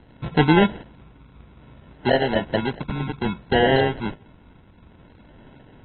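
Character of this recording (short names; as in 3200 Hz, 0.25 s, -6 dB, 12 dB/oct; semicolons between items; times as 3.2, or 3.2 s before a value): a quantiser's noise floor 10-bit, dither none; phasing stages 4, 0.59 Hz, lowest notch 540–2600 Hz; aliases and images of a low sample rate 1200 Hz, jitter 0%; AAC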